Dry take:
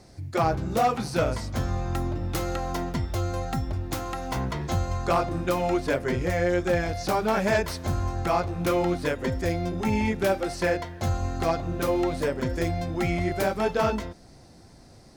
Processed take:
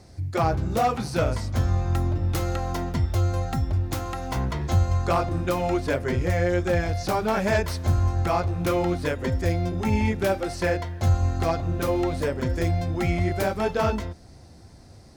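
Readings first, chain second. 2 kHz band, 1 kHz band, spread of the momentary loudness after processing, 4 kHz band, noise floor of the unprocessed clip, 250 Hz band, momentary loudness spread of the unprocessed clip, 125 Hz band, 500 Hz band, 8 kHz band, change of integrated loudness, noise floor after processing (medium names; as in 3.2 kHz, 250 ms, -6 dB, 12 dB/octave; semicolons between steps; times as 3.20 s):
0.0 dB, 0.0 dB, 4 LU, 0.0 dB, -51 dBFS, +0.5 dB, 5 LU, +5.5 dB, 0.0 dB, 0.0 dB, +2.0 dB, -48 dBFS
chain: peaking EQ 80 Hz +9 dB 0.81 oct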